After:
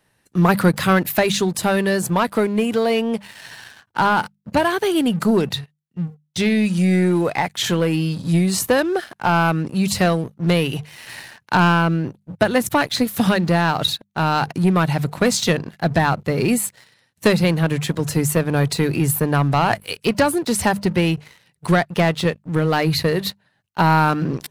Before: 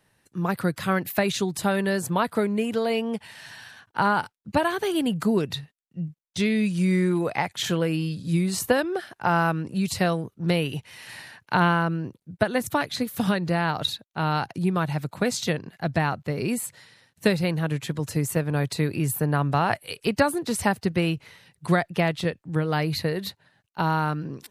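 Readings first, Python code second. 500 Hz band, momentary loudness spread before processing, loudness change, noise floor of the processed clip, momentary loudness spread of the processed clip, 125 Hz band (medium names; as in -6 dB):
+6.0 dB, 10 LU, +6.0 dB, -66 dBFS, 8 LU, +6.0 dB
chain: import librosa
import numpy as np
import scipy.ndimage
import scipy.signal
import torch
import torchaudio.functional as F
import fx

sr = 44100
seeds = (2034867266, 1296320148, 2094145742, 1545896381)

y = fx.hum_notches(x, sr, base_hz=50, count=4)
y = fx.leveller(y, sr, passes=2)
y = fx.rider(y, sr, range_db=10, speed_s=2.0)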